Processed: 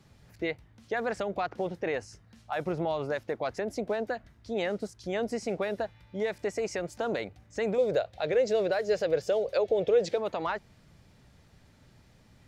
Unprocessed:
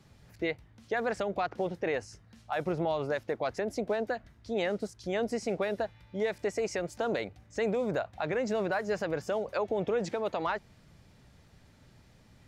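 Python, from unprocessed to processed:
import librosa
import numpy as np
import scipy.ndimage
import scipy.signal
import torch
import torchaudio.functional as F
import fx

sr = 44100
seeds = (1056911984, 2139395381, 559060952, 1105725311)

y = fx.graphic_eq(x, sr, hz=(250, 500, 1000, 4000), db=(-8, 11, -9, 7), at=(7.78, 10.18))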